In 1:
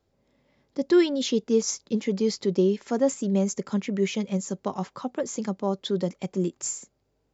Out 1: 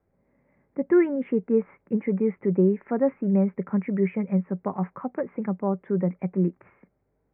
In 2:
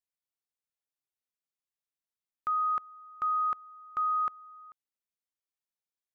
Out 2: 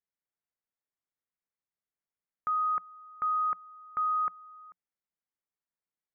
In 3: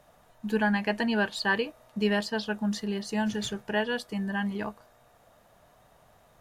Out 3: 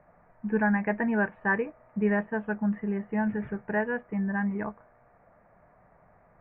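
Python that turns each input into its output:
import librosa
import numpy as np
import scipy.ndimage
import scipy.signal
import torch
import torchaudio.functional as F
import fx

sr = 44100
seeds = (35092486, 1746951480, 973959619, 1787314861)

y = scipy.signal.sosfilt(scipy.signal.butter(12, 2300.0, 'lowpass', fs=sr, output='sos'), x)
y = fx.peak_eq(y, sr, hz=180.0, db=6.0, octaves=0.22)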